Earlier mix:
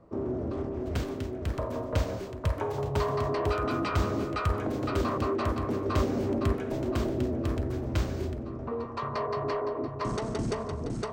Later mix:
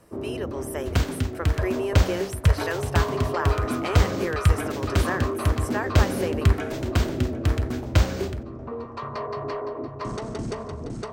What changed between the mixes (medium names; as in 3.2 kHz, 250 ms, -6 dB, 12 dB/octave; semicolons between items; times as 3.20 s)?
speech: unmuted; second sound +10.0 dB